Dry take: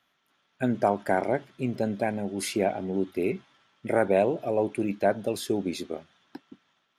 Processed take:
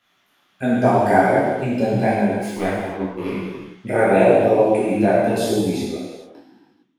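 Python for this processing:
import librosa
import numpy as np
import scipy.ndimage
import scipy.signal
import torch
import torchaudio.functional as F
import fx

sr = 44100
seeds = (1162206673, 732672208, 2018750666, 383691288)

y = fx.fade_out_tail(x, sr, length_s=2.14)
y = fx.power_curve(y, sr, exponent=2.0, at=(2.33, 3.33))
y = fx.low_shelf(y, sr, hz=110.0, db=11.5, at=(5.07, 5.91))
y = fx.rev_gated(y, sr, seeds[0], gate_ms=480, shape='falling', drr_db=-6.0)
y = fx.detune_double(y, sr, cents=31)
y = F.gain(torch.from_numpy(y), 7.0).numpy()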